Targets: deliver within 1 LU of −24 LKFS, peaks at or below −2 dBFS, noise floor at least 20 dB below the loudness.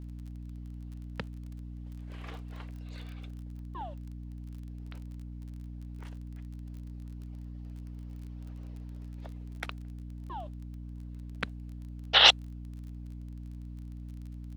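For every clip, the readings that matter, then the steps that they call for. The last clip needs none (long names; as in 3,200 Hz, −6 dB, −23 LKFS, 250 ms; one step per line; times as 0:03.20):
crackle rate 27 per second; mains hum 60 Hz; hum harmonics up to 300 Hz; level of the hum −40 dBFS; integrated loudness −27.5 LKFS; sample peak −5.0 dBFS; target loudness −24.0 LKFS
→ click removal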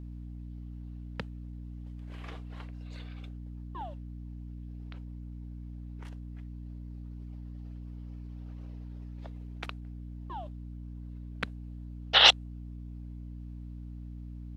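crackle rate 0 per second; mains hum 60 Hz; hum harmonics up to 300 Hz; level of the hum −40 dBFS
→ mains-hum notches 60/120/180/240/300 Hz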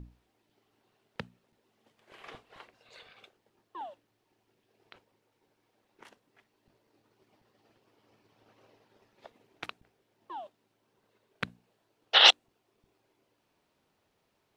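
mains hum none found; integrated loudness −22.5 LKFS; sample peak −5.0 dBFS; target loudness −24.0 LKFS
→ level −1.5 dB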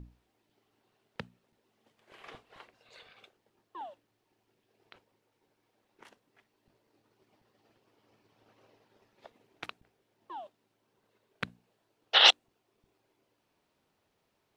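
integrated loudness −24.0 LKFS; sample peak −6.5 dBFS; background noise floor −78 dBFS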